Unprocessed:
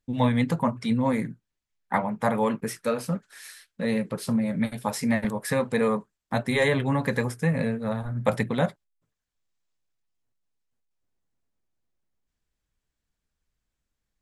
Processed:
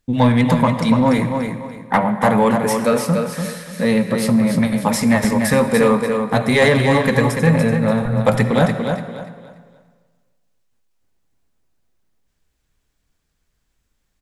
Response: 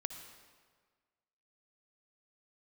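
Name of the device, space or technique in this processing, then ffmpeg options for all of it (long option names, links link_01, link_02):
saturated reverb return: -filter_complex "[0:a]asplit=2[link_01][link_02];[1:a]atrim=start_sample=2205[link_03];[link_02][link_03]afir=irnorm=-1:irlink=0,asoftclip=type=tanh:threshold=-22dB,volume=4.5dB[link_04];[link_01][link_04]amix=inputs=2:normalize=0,aecho=1:1:290|580|870|1160:0.501|0.14|0.0393|0.011,volume=3dB"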